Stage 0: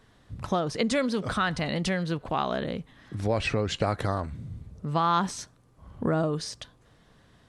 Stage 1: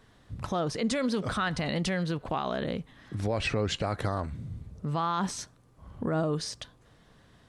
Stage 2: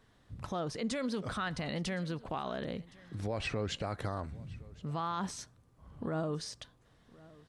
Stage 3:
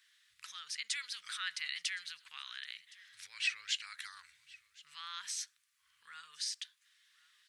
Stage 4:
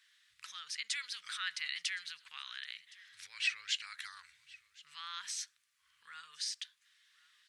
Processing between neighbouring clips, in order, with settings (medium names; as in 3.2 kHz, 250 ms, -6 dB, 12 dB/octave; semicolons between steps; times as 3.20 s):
peak limiter -19.5 dBFS, peak gain reduction 8.5 dB
delay 1066 ms -22.5 dB; trim -6.5 dB
inverse Chebyshev high-pass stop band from 710 Hz, stop band 50 dB; trim +5.5 dB
treble shelf 10 kHz -6.5 dB; trim +1 dB